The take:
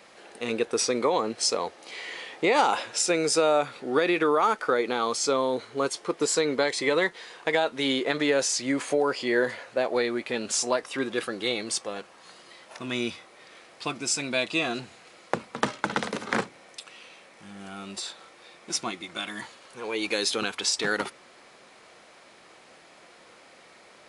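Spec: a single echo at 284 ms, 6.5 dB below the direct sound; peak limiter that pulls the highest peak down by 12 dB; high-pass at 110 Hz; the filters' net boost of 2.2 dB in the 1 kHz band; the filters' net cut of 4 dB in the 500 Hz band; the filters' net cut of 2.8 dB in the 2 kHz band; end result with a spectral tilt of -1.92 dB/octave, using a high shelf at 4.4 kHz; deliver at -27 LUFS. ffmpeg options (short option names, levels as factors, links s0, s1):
-af "highpass=110,equalizer=f=500:t=o:g=-6,equalizer=f=1000:t=o:g=6,equalizer=f=2000:t=o:g=-6,highshelf=f=4400:g=3.5,alimiter=limit=0.133:level=0:latency=1,aecho=1:1:284:0.473,volume=1.33"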